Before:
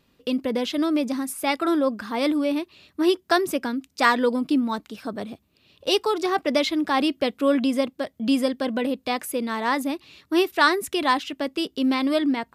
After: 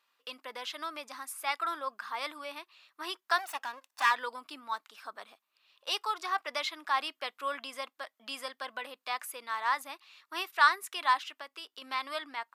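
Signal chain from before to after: 3.38–4.11 s: comb filter that takes the minimum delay 1.1 ms; 11.24–11.82 s: compression, threshold -27 dBFS, peak gain reduction 6 dB; resonant high-pass 1.1 kHz, resonance Q 1.9; trim -8.5 dB

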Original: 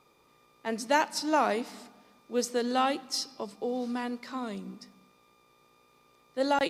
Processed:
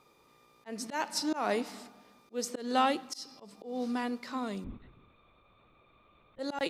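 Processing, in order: 4.64–6.39 s: LPC vocoder at 8 kHz whisper; slow attack 200 ms

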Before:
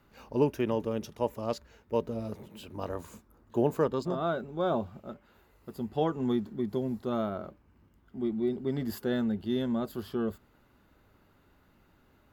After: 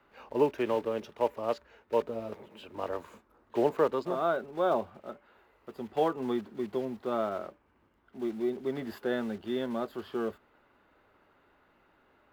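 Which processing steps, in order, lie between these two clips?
block-companded coder 5-bit; three-band isolator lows -14 dB, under 330 Hz, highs -16 dB, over 3.4 kHz; trim +3 dB

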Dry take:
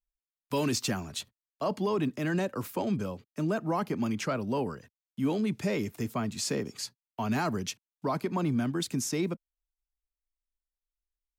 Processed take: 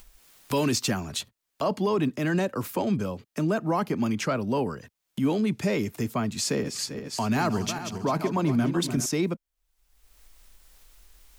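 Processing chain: 6.40–9.06 s: backward echo that repeats 198 ms, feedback 58%, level -9 dB; upward compressor, threshold -31 dBFS; trim +4 dB

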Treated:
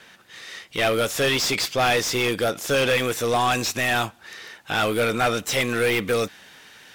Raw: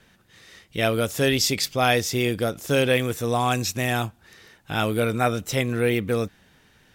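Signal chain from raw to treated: treble shelf 3.4 kHz +7 dB, from 5.47 s +12 dB; overdrive pedal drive 24 dB, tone 2.7 kHz, clips at -4 dBFS; trim -7 dB

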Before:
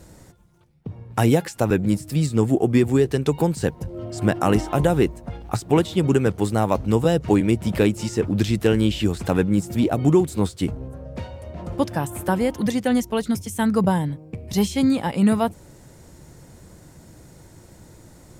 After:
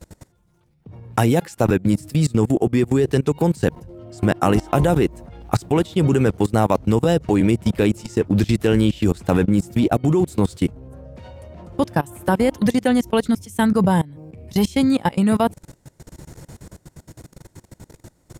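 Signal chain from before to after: level held to a coarse grid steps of 23 dB; trim +7.5 dB

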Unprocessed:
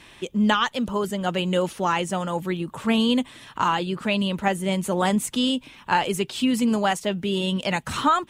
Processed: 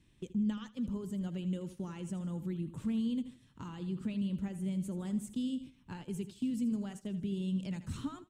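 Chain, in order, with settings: treble shelf 6.5 kHz +8 dB; compression 2.5:1, threshold -30 dBFS, peak gain reduction 10.5 dB; FFT filter 130 Hz 0 dB, 280 Hz -5 dB, 720 Hz -23 dB, 8 kHz -17 dB, 11 kHz -22 dB; feedback delay 80 ms, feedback 44%, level -13 dB; gate -46 dBFS, range -9 dB

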